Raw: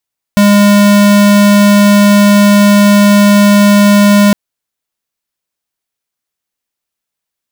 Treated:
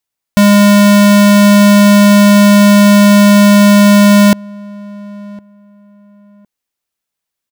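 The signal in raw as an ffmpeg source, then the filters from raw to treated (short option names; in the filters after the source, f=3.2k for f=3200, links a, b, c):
-f lavfi -i "aevalsrc='0.531*(2*lt(mod(204*t,1),0.5)-1)':d=3.96:s=44100"
-filter_complex "[0:a]asplit=2[a][b];[b]adelay=1059,lowpass=f=1.1k:p=1,volume=-23.5dB,asplit=2[c][d];[d]adelay=1059,lowpass=f=1.1k:p=1,volume=0.25[e];[a][c][e]amix=inputs=3:normalize=0"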